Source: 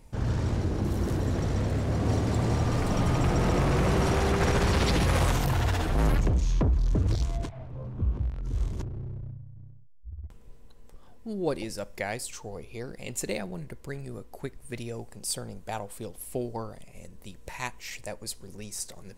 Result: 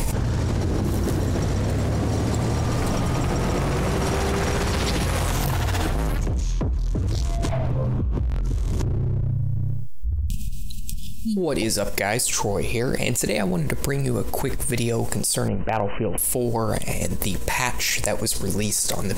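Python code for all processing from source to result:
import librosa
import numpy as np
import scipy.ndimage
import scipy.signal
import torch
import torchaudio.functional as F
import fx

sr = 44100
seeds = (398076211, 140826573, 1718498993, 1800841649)

y = fx.chain(x, sr, fx.brickwall_bandstop(low_hz=230.0, high_hz=2400.0),
    fx.peak_eq(hz=1600.0, db=-11.5, octaves=0.65), at=(10.23, 11.37))
y = fx.chain(y, sr, fx.brickwall_lowpass(high_hz=3100.0),
    fx.clip_hard(threshold_db=-24.0), at=(15.48, 16.18))
y = fx.high_shelf(y, sr, hz=6300.0, db=7.0)
y = fx.env_flatten(y, sr, amount_pct=100)
y = y * 10.0 ** (-2.0 / 20.0)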